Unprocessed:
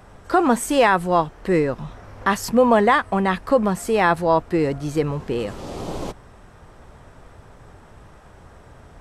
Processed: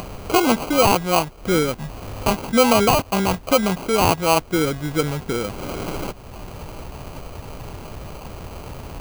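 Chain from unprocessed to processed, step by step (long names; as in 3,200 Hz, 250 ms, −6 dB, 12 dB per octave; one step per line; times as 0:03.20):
sample-rate reduction 1,800 Hz, jitter 0%
upward compression, threshold −22 dBFS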